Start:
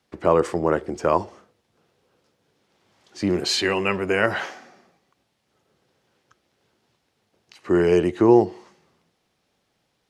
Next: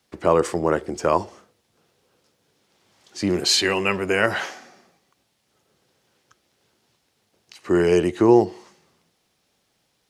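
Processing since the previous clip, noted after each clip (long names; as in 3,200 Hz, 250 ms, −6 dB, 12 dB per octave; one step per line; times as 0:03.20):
high-shelf EQ 4,200 Hz +8.5 dB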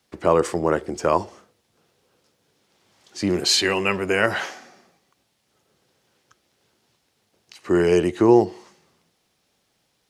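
no processing that can be heard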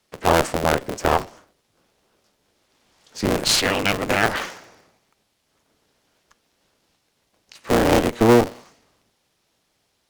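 sub-harmonics by changed cycles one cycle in 3, inverted
harmonic generator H 6 −18 dB, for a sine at −2.5 dBFS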